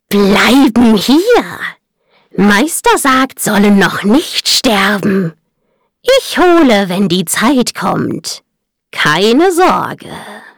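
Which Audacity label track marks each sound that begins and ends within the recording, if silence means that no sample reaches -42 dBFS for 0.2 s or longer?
2.130000	5.340000	sound
6.040000	8.400000	sound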